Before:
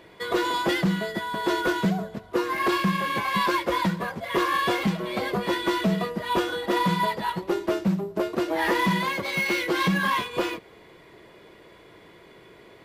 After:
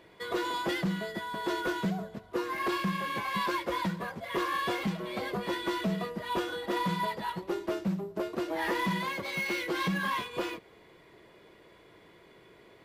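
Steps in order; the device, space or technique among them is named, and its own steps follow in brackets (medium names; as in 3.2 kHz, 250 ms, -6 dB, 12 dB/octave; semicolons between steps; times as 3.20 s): parallel distortion (in parallel at -13.5 dB: hard clipper -28.5 dBFS, distortion -6 dB); on the sum: trim -8 dB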